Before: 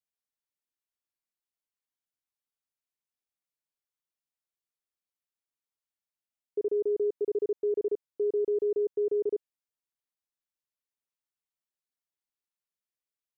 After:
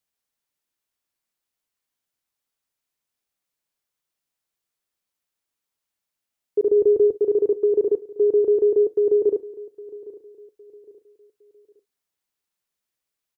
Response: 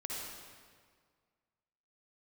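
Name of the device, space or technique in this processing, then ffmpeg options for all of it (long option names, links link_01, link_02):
keyed gated reverb: -filter_complex "[0:a]asettb=1/sr,asplit=3[link_01][link_02][link_03];[link_01]atrim=end=6.694[link_04];[link_02]atrim=start=6.69:end=7.15,asetpts=PTS-STARTPTS,afade=type=in:duration=0.004:curve=qsin,afade=type=out:start_time=0.456:duration=0.004:curve=qsin,lowshelf=frequency=150:gain=10.5[link_05];[link_03]atrim=start=7.146[link_06];[link_04][link_05]acrossfade=duration=0.004:curve1=hsin:curve2=qsin[link_07];[link_07][link_06]acrossfade=duration=0.004:curve1=qsin:curve2=hsin,asplit=3[link_08][link_09][link_10];[1:a]atrim=start_sample=2205[link_11];[link_09][link_11]afir=irnorm=-1:irlink=0[link_12];[link_10]apad=whole_len=589718[link_13];[link_12][link_13]sidechaingate=range=-33dB:threshold=-33dB:ratio=16:detection=peak,volume=-11dB[link_14];[link_08][link_14]amix=inputs=2:normalize=0,aecho=1:1:810|1620|2430:0.112|0.0393|0.0137,volume=9dB"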